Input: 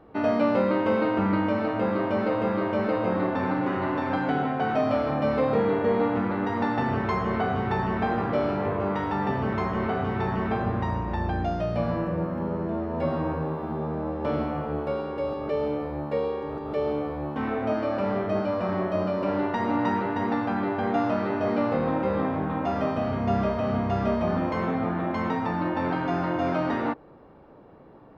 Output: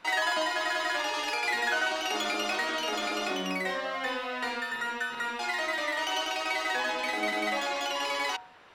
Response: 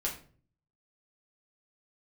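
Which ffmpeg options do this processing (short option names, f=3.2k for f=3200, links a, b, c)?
-af "asetrate=142002,aresample=44100,bandreject=f=67.19:t=h:w=4,bandreject=f=134.38:t=h:w=4,bandreject=f=201.57:t=h:w=4,bandreject=f=268.76:t=h:w=4,bandreject=f=335.95:t=h:w=4,bandreject=f=403.14:t=h:w=4,bandreject=f=470.33:t=h:w=4,bandreject=f=537.52:t=h:w=4,bandreject=f=604.71:t=h:w=4,bandreject=f=671.9:t=h:w=4,bandreject=f=739.09:t=h:w=4,bandreject=f=806.28:t=h:w=4,bandreject=f=873.47:t=h:w=4,bandreject=f=940.66:t=h:w=4,bandreject=f=1.00785k:t=h:w=4,bandreject=f=1.07504k:t=h:w=4,bandreject=f=1.14223k:t=h:w=4,bandreject=f=1.20942k:t=h:w=4,bandreject=f=1.27661k:t=h:w=4,bandreject=f=1.3438k:t=h:w=4,bandreject=f=1.41099k:t=h:w=4,bandreject=f=1.47818k:t=h:w=4,bandreject=f=1.54537k:t=h:w=4,bandreject=f=1.61256k:t=h:w=4,volume=-4.5dB"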